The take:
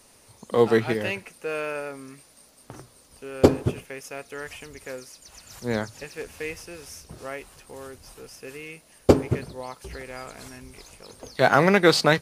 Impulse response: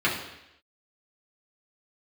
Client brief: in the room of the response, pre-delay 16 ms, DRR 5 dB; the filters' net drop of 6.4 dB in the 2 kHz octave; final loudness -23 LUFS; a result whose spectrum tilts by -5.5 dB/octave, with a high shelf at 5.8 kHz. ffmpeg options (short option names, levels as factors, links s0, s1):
-filter_complex "[0:a]equalizer=f=2000:t=o:g=-8,highshelf=f=5800:g=-8.5,asplit=2[s0][s1];[1:a]atrim=start_sample=2205,adelay=16[s2];[s1][s2]afir=irnorm=-1:irlink=0,volume=0.1[s3];[s0][s3]amix=inputs=2:normalize=0,volume=1.06"